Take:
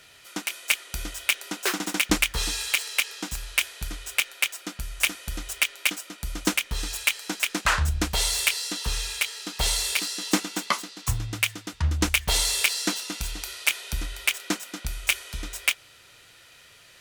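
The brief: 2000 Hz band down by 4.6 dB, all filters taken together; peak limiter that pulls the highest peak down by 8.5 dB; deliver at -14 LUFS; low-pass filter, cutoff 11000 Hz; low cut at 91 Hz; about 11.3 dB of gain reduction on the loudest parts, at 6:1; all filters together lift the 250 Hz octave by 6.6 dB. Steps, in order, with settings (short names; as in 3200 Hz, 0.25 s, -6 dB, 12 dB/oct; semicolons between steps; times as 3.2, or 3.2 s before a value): HPF 91 Hz; LPF 11000 Hz; bell 250 Hz +9 dB; bell 2000 Hz -6 dB; compressor 6:1, threshold -26 dBFS; gain +19.5 dB; limiter -0.5 dBFS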